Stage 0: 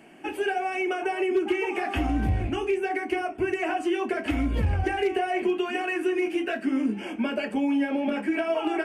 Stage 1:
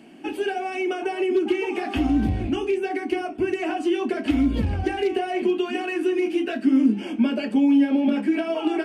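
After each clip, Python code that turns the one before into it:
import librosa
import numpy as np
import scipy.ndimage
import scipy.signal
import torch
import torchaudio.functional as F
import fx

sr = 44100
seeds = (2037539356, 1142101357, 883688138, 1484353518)

y = fx.graphic_eq_10(x, sr, hz=(250, 2000, 4000), db=(10, -3, 9))
y = F.gain(torch.from_numpy(y), -1.5).numpy()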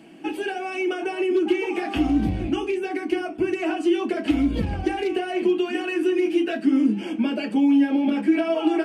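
y = x + 0.42 * np.pad(x, (int(6.1 * sr / 1000.0), 0))[:len(x)]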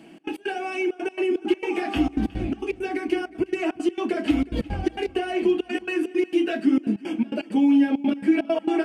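y = fx.step_gate(x, sr, bpm=166, pattern='xx.x.xxxxx.x.', floor_db=-24.0, edge_ms=4.5)
y = fx.echo_feedback(y, sr, ms=363, feedback_pct=43, wet_db=-21.0)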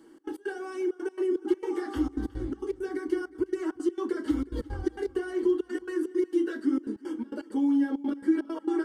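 y = fx.fixed_phaser(x, sr, hz=680.0, stages=6)
y = F.gain(torch.from_numpy(y), -3.5).numpy()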